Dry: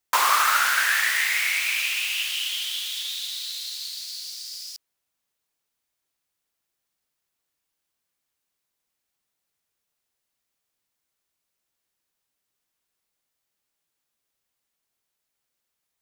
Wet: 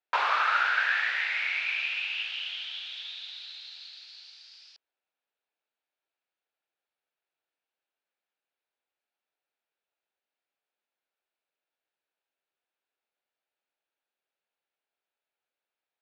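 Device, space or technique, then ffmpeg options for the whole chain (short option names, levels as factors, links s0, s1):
phone earpiece: -af "highpass=470,equalizer=f=1100:t=q:w=4:g=-9,equalizer=f=2000:t=q:w=4:g=-7,equalizer=f=3100:t=q:w=4:g=-5,lowpass=f=3200:w=0.5412,lowpass=f=3200:w=1.3066"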